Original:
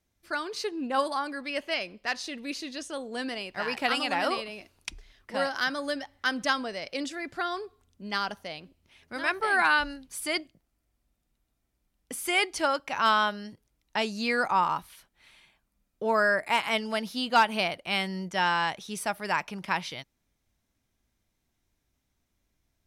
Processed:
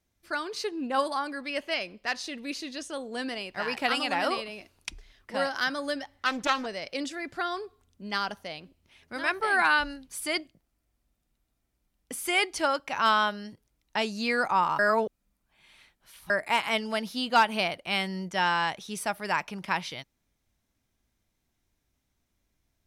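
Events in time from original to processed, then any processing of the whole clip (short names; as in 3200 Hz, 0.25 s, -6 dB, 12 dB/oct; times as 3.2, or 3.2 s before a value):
6.16–6.66 Doppler distortion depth 0.46 ms
14.79–16.3 reverse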